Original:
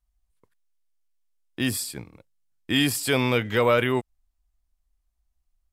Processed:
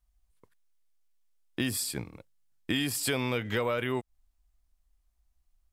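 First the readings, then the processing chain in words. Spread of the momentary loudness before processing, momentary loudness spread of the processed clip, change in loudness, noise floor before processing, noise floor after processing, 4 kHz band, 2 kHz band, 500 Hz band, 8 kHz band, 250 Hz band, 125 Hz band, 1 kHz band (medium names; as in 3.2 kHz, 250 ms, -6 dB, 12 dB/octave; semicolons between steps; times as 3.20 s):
9 LU, 12 LU, -7.0 dB, -75 dBFS, -74 dBFS, -6.5 dB, -7.0 dB, -8.5 dB, -3.0 dB, -6.5 dB, -6.5 dB, -8.5 dB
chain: compression 6:1, threshold -29 dBFS, peak gain reduction 13 dB; trim +2 dB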